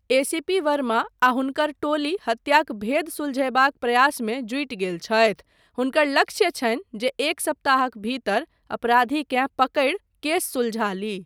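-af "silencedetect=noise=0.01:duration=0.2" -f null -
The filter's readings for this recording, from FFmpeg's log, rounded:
silence_start: 5.40
silence_end: 5.78 | silence_duration: 0.38
silence_start: 8.44
silence_end: 8.70 | silence_duration: 0.26
silence_start: 9.97
silence_end: 10.23 | silence_duration: 0.26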